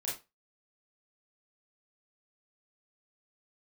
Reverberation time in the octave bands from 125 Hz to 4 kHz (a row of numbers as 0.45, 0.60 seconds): 0.20, 0.25, 0.25, 0.25, 0.25, 0.20 seconds